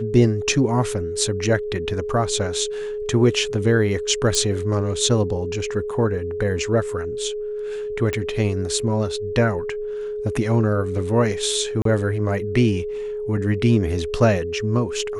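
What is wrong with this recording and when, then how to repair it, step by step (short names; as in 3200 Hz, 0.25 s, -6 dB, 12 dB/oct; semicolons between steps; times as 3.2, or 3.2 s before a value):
tone 420 Hz -25 dBFS
4.35 pop -8 dBFS
8.13 pop
11.82–11.85 gap 33 ms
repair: de-click; notch 420 Hz, Q 30; interpolate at 11.82, 33 ms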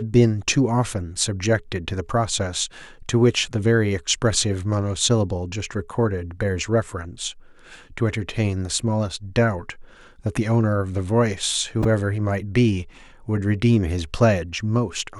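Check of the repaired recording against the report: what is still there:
none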